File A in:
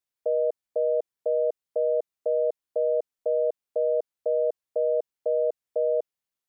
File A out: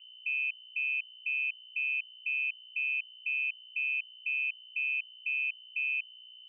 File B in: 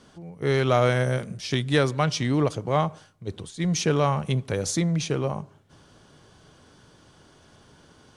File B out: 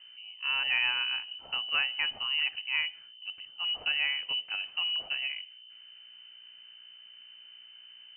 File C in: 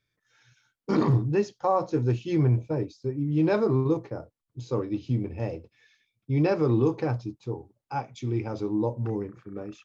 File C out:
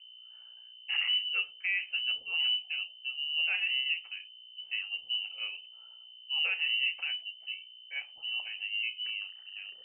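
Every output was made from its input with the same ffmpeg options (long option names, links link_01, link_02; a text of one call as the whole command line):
ffmpeg -i in.wav -af "aeval=exprs='val(0)+0.00708*(sin(2*PI*60*n/s)+sin(2*PI*2*60*n/s)/2+sin(2*PI*3*60*n/s)/3+sin(2*PI*4*60*n/s)/4+sin(2*PI*5*60*n/s)/5)':channel_layout=same,lowpass=frequency=2600:width_type=q:width=0.5098,lowpass=frequency=2600:width_type=q:width=0.6013,lowpass=frequency=2600:width_type=q:width=0.9,lowpass=frequency=2600:width_type=q:width=2.563,afreqshift=-3100,bandreject=frequency=70.51:width_type=h:width=4,bandreject=frequency=141.02:width_type=h:width=4,bandreject=frequency=211.53:width_type=h:width=4,bandreject=frequency=282.04:width_type=h:width=4,bandreject=frequency=352.55:width_type=h:width=4,bandreject=frequency=423.06:width_type=h:width=4,bandreject=frequency=493.57:width_type=h:width=4,bandreject=frequency=564.08:width_type=h:width=4,bandreject=frequency=634.59:width_type=h:width=4,bandreject=frequency=705.1:width_type=h:width=4,bandreject=frequency=775.61:width_type=h:width=4,bandreject=frequency=846.12:width_type=h:width=4,volume=-8dB" out.wav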